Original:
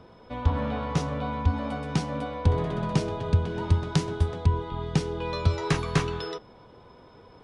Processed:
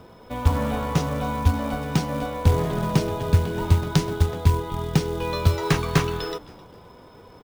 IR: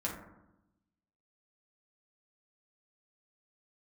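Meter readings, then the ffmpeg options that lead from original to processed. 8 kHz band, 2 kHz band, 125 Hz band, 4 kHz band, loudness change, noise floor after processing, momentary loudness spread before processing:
+6.0 dB, +4.5 dB, +4.0 dB, +4.5 dB, +4.0 dB, -48 dBFS, 6 LU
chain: -filter_complex "[0:a]asplit=4[s0][s1][s2][s3];[s1]adelay=261,afreqshift=-120,volume=0.0891[s4];[s2]adelay=522,afreqshift=-240,volume=0.0302[s5];[s3]adelay=783,afreqshift=-360,volume=0.0104[s6];[s0][s4][s5][s6]amix=inputs=4:normalize=0,acrusher=bits=5:mode=log:mix=0:aa=0.000001,volume=1.58"

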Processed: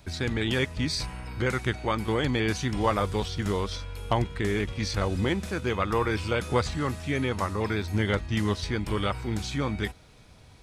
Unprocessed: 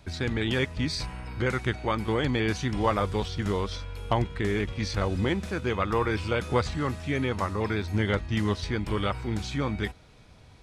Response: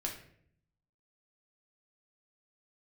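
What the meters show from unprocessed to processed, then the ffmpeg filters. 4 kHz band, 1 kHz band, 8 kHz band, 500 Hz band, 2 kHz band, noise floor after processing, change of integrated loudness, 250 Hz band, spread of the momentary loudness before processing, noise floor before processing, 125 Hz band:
+1.5 dB, 0.0 dB, +3.5 dB, 0.0 dB, +0.5 dB, -53 dBFS, 0.0 dB, 0.0 dB, 4 LU, -53 dBFS, 0.0 dB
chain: -af "highshelf=f=7200:g=8"

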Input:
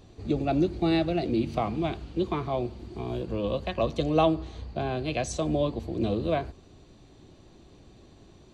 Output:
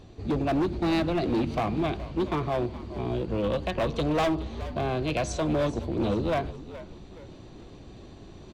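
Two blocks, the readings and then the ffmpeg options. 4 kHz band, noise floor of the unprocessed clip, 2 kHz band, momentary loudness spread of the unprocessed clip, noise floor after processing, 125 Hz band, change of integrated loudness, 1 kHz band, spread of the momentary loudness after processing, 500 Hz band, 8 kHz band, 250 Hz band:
+0.5 dB, -54 dBFS, +3.0 dB, 9 LU, -47 dBFS, +1.0 dB, +0.5 dB, +0.5 dB, 21 LU, 0.0 dB, -0.5 dB, +0.5 dB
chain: -filter_complex "[0:a]highshelf=f=7100:g=-9.5,asoftclip=type=hard:threshold=0.0562,asplit=4[s0][s1][s2][s3];[s1]adelay=421,afreqshift=-72,volume=0.178[s4];[s2]adelay=842,afreqshift=-144,volume=0.0661[s5];[s3]adelay=1263,afreqshift=-216,volume=0.0243[s6];[s0][s4][s5][s6]amix=inputs=4:normalize=0,areverse,acompressor=mode=upward:threshold=0.00794:ratio=2.5,areverse,volume=1.41"

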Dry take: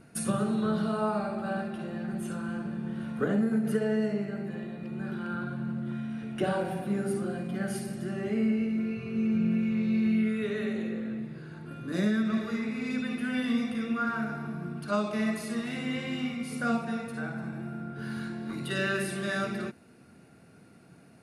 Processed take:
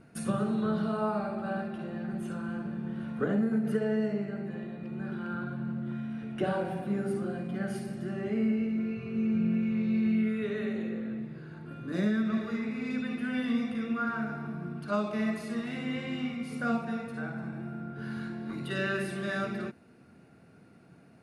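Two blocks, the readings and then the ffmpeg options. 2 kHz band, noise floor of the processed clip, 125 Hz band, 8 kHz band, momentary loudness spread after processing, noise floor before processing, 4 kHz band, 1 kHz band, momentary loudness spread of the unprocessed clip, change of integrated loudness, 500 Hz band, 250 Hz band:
-2.0 dB, -57 dBFS, -1.0 dB, no reading, 9 LU, -55 dBFS, -4.0 dB, -1.5 dB, 9 LU, -1.5 dB, -1.0 dB, -1.0 dB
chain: -af "aemphasis=mode=reproduction:type=cd,volume=0.841"

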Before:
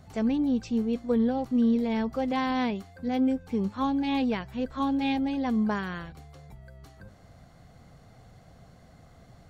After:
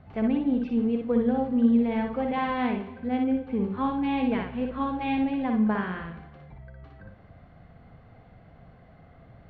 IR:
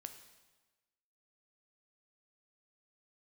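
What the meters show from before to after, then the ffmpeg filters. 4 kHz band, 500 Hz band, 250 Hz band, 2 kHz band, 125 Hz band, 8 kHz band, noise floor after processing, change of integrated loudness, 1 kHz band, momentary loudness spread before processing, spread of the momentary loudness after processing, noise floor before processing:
-4.5 dB, +1.5 dB, +1.0 dB, +1.5 dB, +1.5 dB, no reading, -53 dBFS, +1.0 dB, +1.5 dB, 6 LU, 7 LU, -55 dBFS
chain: -filter_complex "[0:a]lowpass=f=2900:w=0.5412,lowpass=f=2900:w=1.3066,asplit=2[s0][s1];[1:a]atrim=start_sample=2205,adelay=60[s2];[s1][s2]afir=irnorm=-1:irlink=0,volume=1.19[s3];[s0][s3]amix=inputs=2:normalize=0"

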